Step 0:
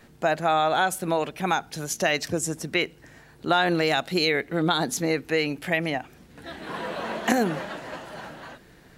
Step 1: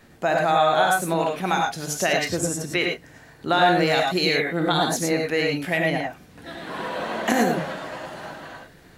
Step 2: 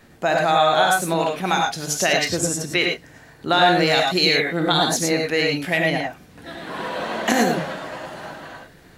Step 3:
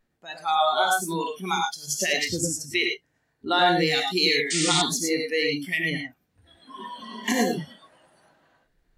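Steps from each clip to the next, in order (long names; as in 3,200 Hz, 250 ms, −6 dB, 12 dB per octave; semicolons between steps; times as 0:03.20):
reverb whose tail is shaped and stops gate 130 ms rising, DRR 0.5 dB
dynamic equaliser 4,600 Hz, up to +5 dB, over −38 dBFS, Q 0.77; level +1.5 dB
sound drawn into the spectrogram noise, 0:04.50–0:04.82, 1,200–9,200 Hz −22 dBFS; noise reduction from a noise print of the clip's start 22 dB; level −3.5 dB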